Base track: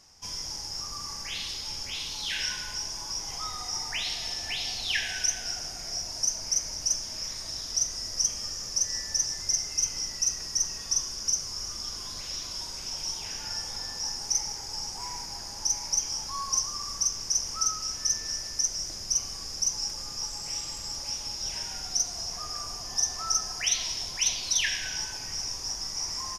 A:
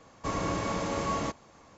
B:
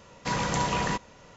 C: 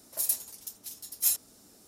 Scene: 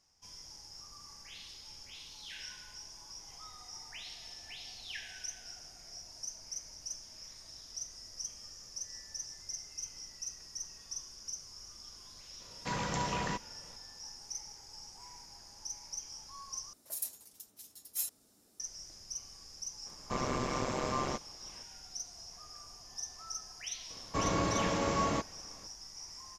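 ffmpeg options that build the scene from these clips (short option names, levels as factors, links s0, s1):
-filter_complex "[1:a]asplit=2[s0][s1];[0:a]volume=0.178[s2];[s0]aeval=exprs='val(0)*sin(2*PI*67*n/s)':c=same[s3];[s2]asplit=2[s4][s5];[s4]atrim=end=16.734[s6];[3:a]atrim=end=1.87,asetpts=PTS-STARTPTS,volume=0.316[s7];[s5]atrim=start=18.596[s8];[2:a]atrim=end=1.36,asetpts=PTS-STARTPTS,volume=0.422,afade=t=in:d=0.004:c=hsin,afade=t=out:st=1.356:d=0.004:c=hsin,adelay=12400[s9];[s3]atrim=end=1.77,asetpts=PTS-STARTPTS,volume=0.944,afade=t=in:d=0.004:c=hsin,afade=t=out:st=1.766:d=0.004:c=hsin,adelay=19860[s10];[s1]atrim=end=1.77,asetpts=PTS-STARTPTS,volume=0.944,afade=t=in:d=0.004:c=hsin,afade=t=out:st=1.766:d=0.004:c=hsin,adelay=23900[s11];[s6][s7]acrossfade=d=0.004:c1=hsin:c2=hsin[s12];[s12][s8]acrossfade=d=0.004:c1=hsin:c2=hsin[s13];[s13][s9][s10][s11]amix=inputs=4:normalize=0"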